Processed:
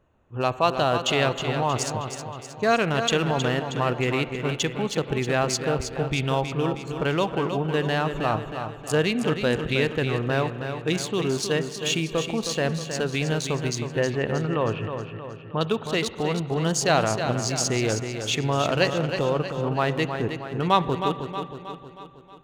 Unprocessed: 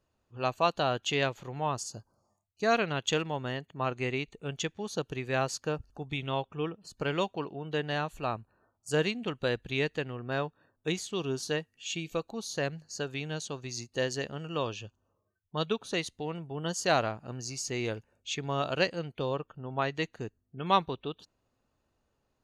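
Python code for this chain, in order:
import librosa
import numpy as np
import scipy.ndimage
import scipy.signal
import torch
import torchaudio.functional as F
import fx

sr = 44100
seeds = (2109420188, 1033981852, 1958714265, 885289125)

p1 = fx.wiener(x, sr, points=9)
p2 = fx.lowpass(p1, sr, hz=2600.0, slope=24, at=(13.75, 15.61))
p3 = fx.over_compress(p2, sr, threshold_db=-37.0, ratio=-1.0)
p4 = p2 + (p3 * librosa.db_to_amplitude(-1.0))
p5 = fx.echo_feedback(p4, sr, ms=316, feedback_pct=52, wet_db=-8.0)
p6 = fx.rev_spring(p5, sr, rt60_s=2.5, pass_ms=(44, 50), chirp_ms=25, drr_db=15.0)
y = p6 * librosa.db_to_amplitude(4.5)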